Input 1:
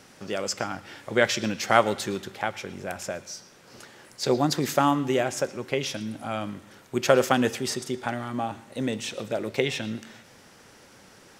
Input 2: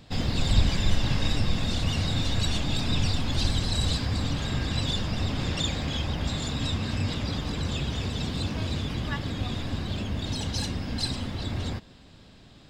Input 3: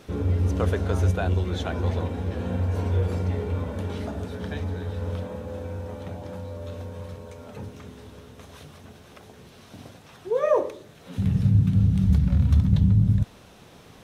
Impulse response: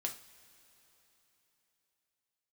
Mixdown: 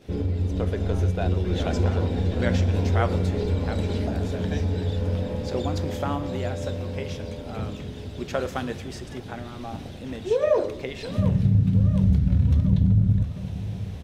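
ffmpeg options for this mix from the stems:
-filter_complex "[0:a]adelay=1250,volume=-14.5dB,asplit=2[link_01][link_02];[link_02]volume=-5dB[link_03];[1:a]volume=-13.5dB[link_04];[2:a]aeval=exprs='0.422*(cos(1*acos(clip(val(0)/0.422,-1,1)))-cos(1*PI/2))+0.00944*(cos(7*acos(clip(val(0)/0.422,-1,1)))-cos(7*PI/2))':channel_layout=same,volume=2.5dB,asplit=3[link_05][link_06][link_07];[link_06]volume=-15.5dB[link_08];[link_07]volume=-19.5dB[link_09];[link_04][link_05]amix=inputs=2:normalize=0,equalizer=frequency=1200:width_type=o:width=0.76:gain=-13.5,acompressor=threshold=-24dB:ratio=4,volume=0dB[link_10];[3:a]atrim=start_sample=2205[link_11];[link_03][link_08]amix=inputs=2:normalize=0[link_12];[link_12][link_11]afir=irnorm=-1:irlink=0[link_13];[link_09]aecho=0:1:717|1434|2151|2868|3585|4302:1|0.45|0.202|0.0911|0.041|0.0185[link_14];[link_01][link_10][link_13][link_14]amix=inputs=4:normalize=0,agate=range=-7dB:threshold=-50dB:ratio=16:detection=peak,highshelf=frequency=4700:gain=-8.5,dynaudnorm=framelen=190:gausssize=11:maxgain=3.5dB"

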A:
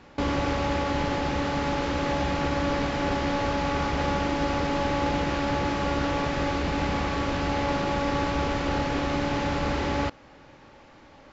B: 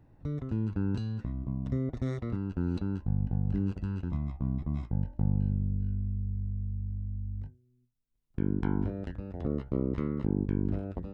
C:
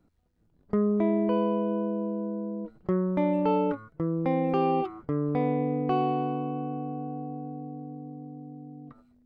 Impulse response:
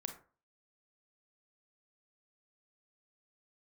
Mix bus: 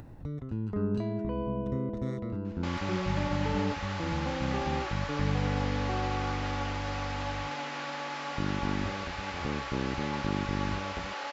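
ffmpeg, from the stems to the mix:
-filter_complex "[0:a]highpass=820,flanger=delay=6.4:depth=2.6:regen=70:speed=1:shape=sinusoidal,asoftclip=type=tanh:threshold=-18dB,adelay=2450,volume=-1dB[link_01];[1:a]volume=-3dB[link_02];[2:a]alimiter=limit=-18dB:level=0:latency=1,volume=-7.5dB[link_03];[link_01][link_02][link_03]amix=inputs=3:normalize=0,acompressor=mode=upward:threshold=-35dB:ratio=2.5"

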